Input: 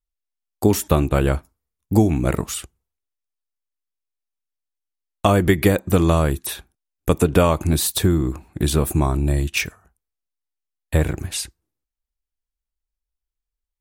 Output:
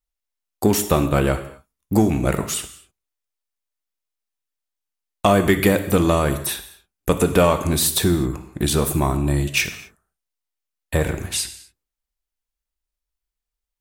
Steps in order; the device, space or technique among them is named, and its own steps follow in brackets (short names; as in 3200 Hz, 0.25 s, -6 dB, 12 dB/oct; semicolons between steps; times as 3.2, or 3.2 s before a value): low shelf 260 Hz -5.5 dB; non-linear reverb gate 0.28 s falling, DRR 8.5 dB; parallel distortion (in parallel at -8.5 dB: hard clip -19.5 dBFS, distortion -7 dB)